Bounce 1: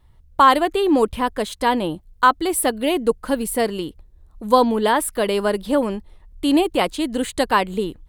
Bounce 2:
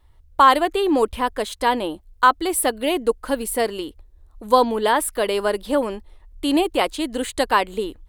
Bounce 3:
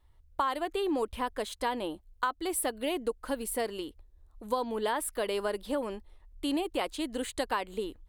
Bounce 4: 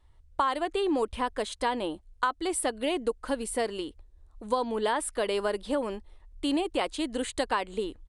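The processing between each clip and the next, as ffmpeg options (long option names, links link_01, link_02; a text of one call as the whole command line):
ffmpeg -i in.wav -af "equalizer=frequency=160:width_type=o:width=0.83:gain=-13.5" out.wav
ffmpeg -i in.wav -af "acompressor=threshold=-18dB:ratio=6,volume=-8.5dB" out.wav
ffmpeg -i in.wav -af "aresample=22050,aresample=44100,volume=3dB" out.wav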